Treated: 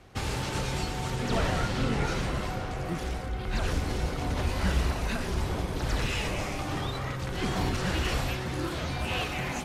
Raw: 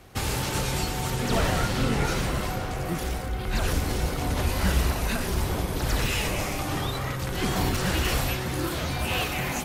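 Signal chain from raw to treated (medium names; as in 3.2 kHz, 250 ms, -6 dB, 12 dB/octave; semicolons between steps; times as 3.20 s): distance through air 50 m; trim -3 dB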